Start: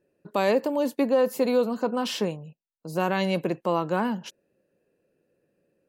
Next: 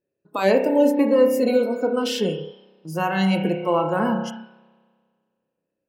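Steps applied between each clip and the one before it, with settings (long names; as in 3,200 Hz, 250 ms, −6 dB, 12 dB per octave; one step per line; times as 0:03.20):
spring reverb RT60 1.8 s, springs 31 ms, chirp 65 ms, DRR 2.5 dB
noise reduction from a noise print of the clip's start 16 dB
level +3.5 dB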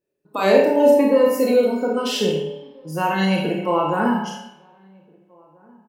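slap from a distant wall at 280 metres, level −29 dB
four-comb reverb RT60 0.51 s, combs from 26 ms, DRR −0.5 dB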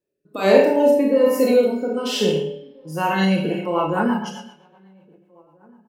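rotating-speaker cabinet horn 1.2 Hz, later 8 Hz, at 0:03.23
level +1.5 dB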